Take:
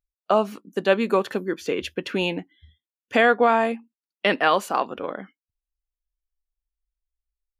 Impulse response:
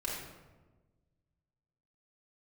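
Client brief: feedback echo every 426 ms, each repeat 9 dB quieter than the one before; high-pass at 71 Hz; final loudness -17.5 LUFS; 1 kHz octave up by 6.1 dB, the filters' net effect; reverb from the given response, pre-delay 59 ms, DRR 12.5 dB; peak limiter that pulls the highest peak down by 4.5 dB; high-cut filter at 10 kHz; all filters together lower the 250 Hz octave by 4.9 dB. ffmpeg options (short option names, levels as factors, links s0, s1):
-filter_complex "[0:a]highpass=71,lowpass=10000,equalizer=f=250:t=o:g=-7,equalizer=f=1000:t=o:g=8.5,alimiter=limit=0.501:level=0:latency=1,aecho=1:1:426|852|1278|1704:0.355|0.124|0.0435|0.0152,asplit=2[s0][s1];[1:a]atrim=start_sample=2205,adelay=59[s2];[s1][s2]afir=irnorm=-1:irlink=0,volume=0.158[s3];[s0][s3]amix=inputs=2:normalize=0,volume=1.58"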